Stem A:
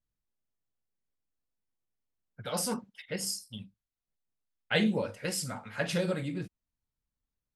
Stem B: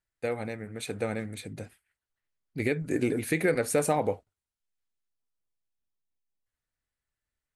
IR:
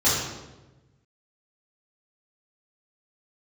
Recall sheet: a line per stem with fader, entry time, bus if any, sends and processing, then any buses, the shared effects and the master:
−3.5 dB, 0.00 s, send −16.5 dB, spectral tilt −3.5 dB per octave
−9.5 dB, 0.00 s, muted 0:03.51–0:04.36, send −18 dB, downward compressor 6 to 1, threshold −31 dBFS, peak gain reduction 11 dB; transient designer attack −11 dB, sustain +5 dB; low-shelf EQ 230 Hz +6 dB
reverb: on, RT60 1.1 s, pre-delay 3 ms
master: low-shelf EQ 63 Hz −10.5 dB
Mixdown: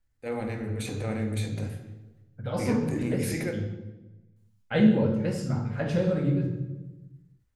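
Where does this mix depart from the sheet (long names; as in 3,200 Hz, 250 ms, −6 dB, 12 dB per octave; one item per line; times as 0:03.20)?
stem B −9.5 dB → 0.0 dB
master: missing low-shelf EQ 63 Hz −10.5 dB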